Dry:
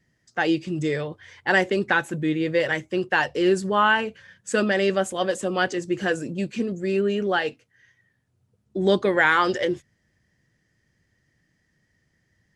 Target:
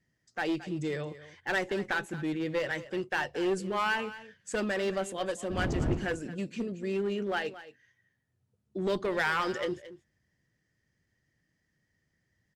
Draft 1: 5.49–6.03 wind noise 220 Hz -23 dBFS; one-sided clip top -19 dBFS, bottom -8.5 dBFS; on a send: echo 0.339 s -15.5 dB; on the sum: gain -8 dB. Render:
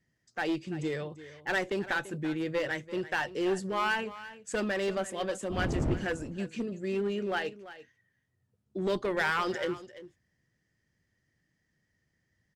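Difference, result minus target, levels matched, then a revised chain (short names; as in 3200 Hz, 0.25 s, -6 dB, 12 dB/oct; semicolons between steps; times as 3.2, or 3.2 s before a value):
echo 0.117 s late
5.49–6.03 wind noise 220 Hz -23 dBFS; one-sided clip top -19 dBFS, bottom -8.5 dBFS; on a send: echo 0.222 s -15.5 dB; on the sum: gain -8 dB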